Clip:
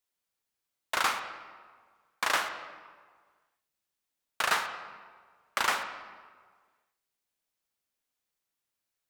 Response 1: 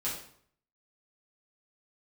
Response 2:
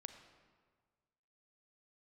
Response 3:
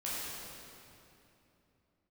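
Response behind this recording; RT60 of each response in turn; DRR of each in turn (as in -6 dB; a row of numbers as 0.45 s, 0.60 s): 2; 0.60 s, 1.6 s, 2.9 s; -8.0 dB, 8.0 dB, -9.0 dB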